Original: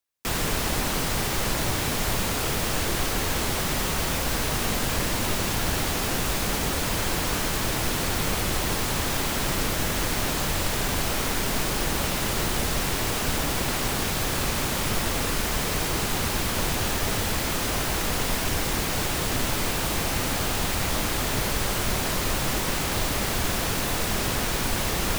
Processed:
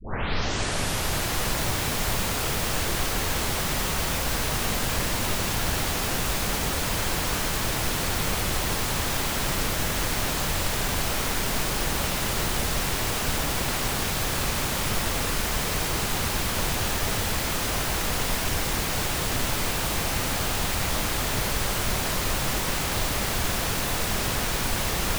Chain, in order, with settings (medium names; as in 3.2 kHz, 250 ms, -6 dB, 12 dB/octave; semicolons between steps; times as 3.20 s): tape start-up on the opening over 1.49 s; dynamic bell 300 Hz, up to -3 dB, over -41 dBFS, Q 1.1